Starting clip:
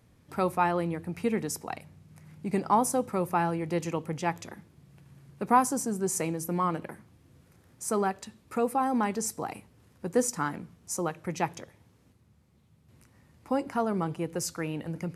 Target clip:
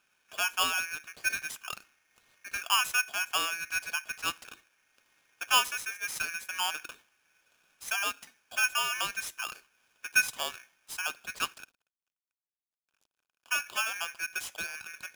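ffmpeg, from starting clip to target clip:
-filter_complex "[0:a]asettb=1/sr,asplit=3[a][b][c];[a]atrim=end=11.544[d];[b]atrim=start=11.54:end=13.55,asetpts=PTS-STARTPTS,afade=t=in:d=0.004:c=qsin,afade=t=out:st=2.006:d=0.004:c=qsin,aeval=exprs='sgn(val(0))*max(abs(val(0))-0.002,0)':c=same[e];[c]atrim=start=13.546[f];[d][e]acrossfade=d=0.004:c1=hsin:c2=qsin[g];[g][f]acrossfade=d=0.004:c1=qsin:c2=hsin,highpass=460,equalizer=f=490:t=q:w=4:g=7,equalizer=f=2.1k:t=q:w=4:g=-7,equalizer=f=6.3k:t=q:w=4:g=-8,lowpass=f=9.1k:w=0.5412,lowpass=f=9.1k:w=1.3066,aeval=exprs='val(0)*sgn(sin(2*PI*2000*n/s))':c=same,volume=-2.5dB"

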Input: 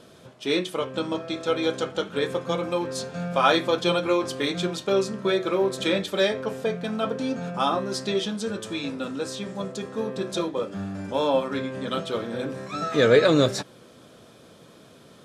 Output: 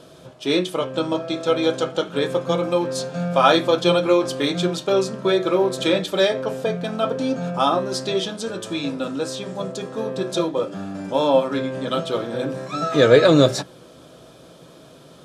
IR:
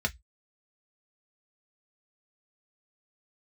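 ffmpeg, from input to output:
-filter_complex "[0:a]asplit=2[a][b];[1:a]atrim=start_sample=2205,lowpass=2.2k[c];[b][c]afir=irnorm=-1:irlink=0,volume=-14.5dB[d];[a][d]amix=inputs=2:normalize=0,volume=3.5dB"

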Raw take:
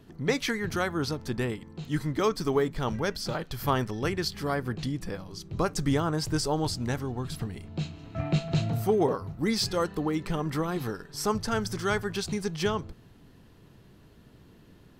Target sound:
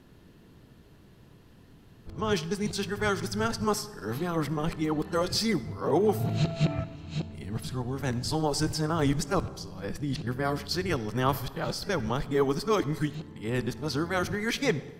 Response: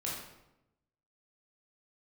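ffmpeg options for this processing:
-filter_complex "[0:a]areverse,asplit=2[a][b];[1:a]atrim=start_sample=2205,asetrate=30429,aresample=44100,adelay=24[c];[b][c]afir=irnorm=-1:irlink=0,volume=-20.5dB[d];[a][d]amix=inputs=2:normalize=0"

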